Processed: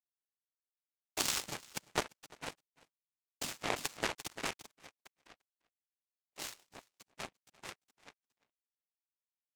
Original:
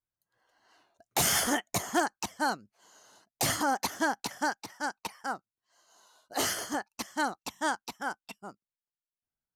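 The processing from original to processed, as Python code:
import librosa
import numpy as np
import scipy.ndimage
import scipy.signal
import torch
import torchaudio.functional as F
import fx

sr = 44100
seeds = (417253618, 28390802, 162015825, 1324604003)

p1 = fx.high_shelf(x, sr, hz=3100.0, db=6.0)
p2 = fx.noise_vocoder(p1, sr, seeds[0], bands=4)
p3 = fx.power_curve(p2, sr, exponent=3.0)
p4 = p3 + fx.echo_single(p3, sr, ms=345, db=-23.5, dry=0)
p5 = fx.env_flatten(p4, sr, amount_pct=50, at=(3.63, 4.7), fade=0.02)
y = p5 * librosa.db_to_amplitude(3.0)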